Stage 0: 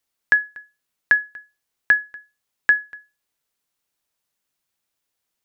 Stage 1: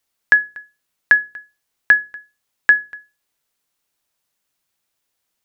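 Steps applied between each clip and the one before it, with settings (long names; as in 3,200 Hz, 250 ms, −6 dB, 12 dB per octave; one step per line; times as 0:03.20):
mains-hum notches 60/120/180/240/300/360/420/480 Hz
level +4 dB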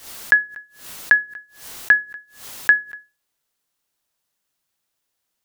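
parametric band 2,300 Hz −2.5 dB 0.3 octaves
background raised ahead of every attack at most 110 dB per second
level −1.5 dB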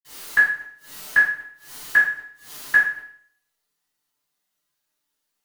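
convolution reverb RT60 0.55 s, pre-delay 47 ms
level −2 dB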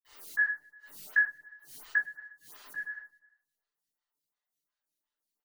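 spectral envelope exaggerated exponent 1.5
repeating echo 115 ms, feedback 58%, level −23 dB
phaser with staggered stages 2.8 Hz
level −8.5 dB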